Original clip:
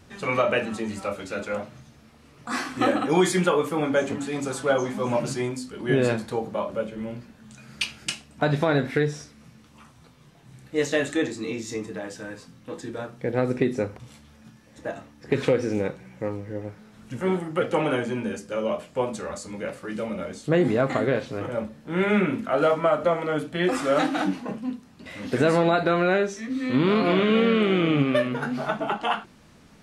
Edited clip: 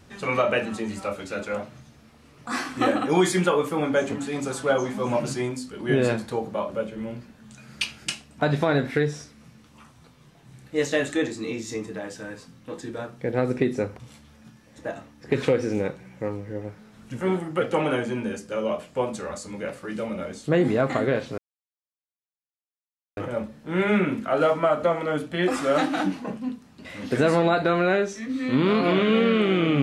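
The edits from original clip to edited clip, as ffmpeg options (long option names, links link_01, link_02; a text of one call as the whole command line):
ffmpeg -i in.wav -filter_complex "[0:a]asplit=2[link_01][link_02];[link_01]atrim=end=21.38,asetpts=PTS-STARTPTS,afade=type=out:start_time=21.376:duration=0.004:curve=hsin,apad=pad_dur=1.79[link_03];[link_02]atrim=start=21.38,asetpts=PTS-STARTPTS,afade=type=in:duration=0.004:curve=hsin[link_04];[link_03][link_04]concat=n=2:v=0:a=1" out.wav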